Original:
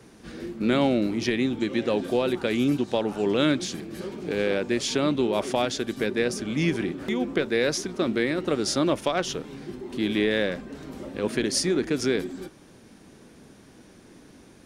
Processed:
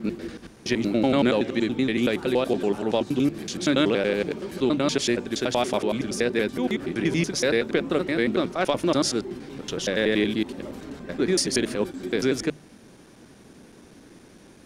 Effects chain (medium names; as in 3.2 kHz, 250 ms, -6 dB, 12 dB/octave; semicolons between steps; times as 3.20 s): slices played last to first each 94 ms, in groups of 7; hum notches 50/100/150 Hz; trim +1.5 dB